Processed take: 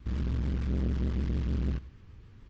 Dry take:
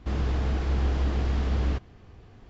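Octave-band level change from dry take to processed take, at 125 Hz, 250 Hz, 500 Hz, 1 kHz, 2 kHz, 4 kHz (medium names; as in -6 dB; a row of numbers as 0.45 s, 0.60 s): -4.0 dB, 0.0 dB, -7.0 dB, -13.5 dB, -9.5 dB, -9.5 dB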